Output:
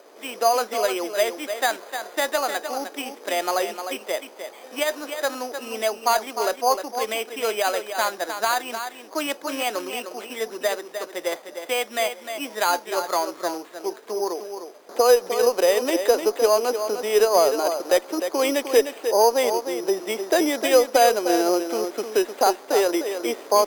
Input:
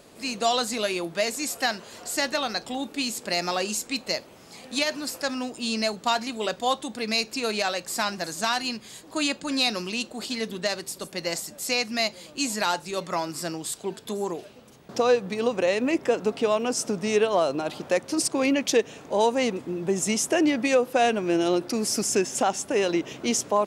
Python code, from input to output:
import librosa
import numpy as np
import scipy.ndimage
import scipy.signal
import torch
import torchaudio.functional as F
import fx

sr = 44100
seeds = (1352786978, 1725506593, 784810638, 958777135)

p1 = fx.high_shelf(x, sr, hz=3800.0, db=-11.5)
p2 = p1 + fx.echo_single(p1, sr, ms=305, db=-8.5, dry=0)
p3 = np.repeat(scipy.signal.resample_poly(p2, 1, 8), 8)[:len(p2)]
p4 = scipy.signal.sosfilt(scipy.signal.butter(4, 370.0, 'highpass', fs=sr, output='sos'), p3)
p5 = fx.cheby_harmonics(p4, sr, harmonics=(4,), levels_db=(-31,), full_scale_db=-1.5)
y = F.gain(torch.from_numpy(p5), 5.5).numpy()